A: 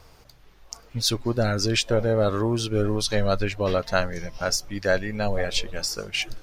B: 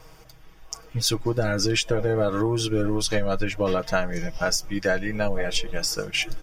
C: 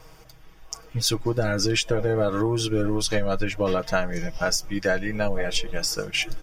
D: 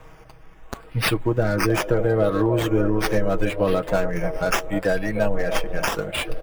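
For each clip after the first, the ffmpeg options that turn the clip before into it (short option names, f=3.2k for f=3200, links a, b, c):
-af "bandreject=f=4.1k:w=5.4,aecho=1:1:6.3:0.72,acompressor=threshold=-20dB:ratio=6,volume=1.5dB"
-af anull
-filter_complex "[0:a]acrossover=split=350|900|3100[a][b][c][d];[b]aecho=1:1:306|612|918|1224|1530|1836|2142|2448:0.562|0.321|0.183|0.104|0.0594|0.0338|0.0193|0.011[e];[c]volume=33.5dB,asoftclip=hard,volume=-33.5dB[f];[d]acrusher=samples=9:mix=1:aa=0.000001:lfo=1:lforange=5.4:lforate=0.75[g];[a][e][f][g]amix=inputs=4:normalize=0,volume=3dB"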